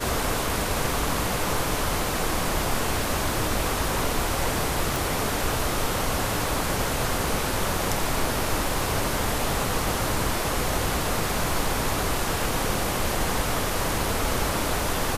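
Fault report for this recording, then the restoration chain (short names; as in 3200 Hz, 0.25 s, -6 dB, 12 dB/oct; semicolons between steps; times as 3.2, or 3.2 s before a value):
4.96 pop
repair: de-click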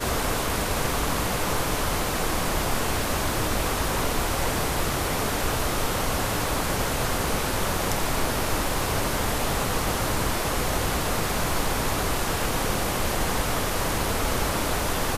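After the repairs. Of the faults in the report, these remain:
none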